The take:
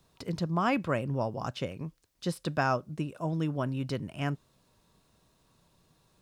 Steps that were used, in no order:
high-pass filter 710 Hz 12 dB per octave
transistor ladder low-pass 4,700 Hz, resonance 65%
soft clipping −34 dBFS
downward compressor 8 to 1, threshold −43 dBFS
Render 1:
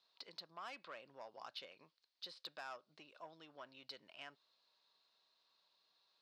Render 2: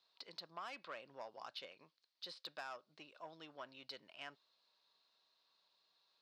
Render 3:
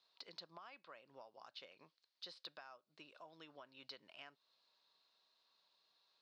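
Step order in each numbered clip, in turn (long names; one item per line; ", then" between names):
transistor ladder low-pass, then soft clipping, then downward compressor, then high-pass filter
transistor ladder low-pass, then soft clipping, then high-pass filter, then downward compressor
high-pass filter, then downward compressor, then transistor ladder low-pass, then soft clipping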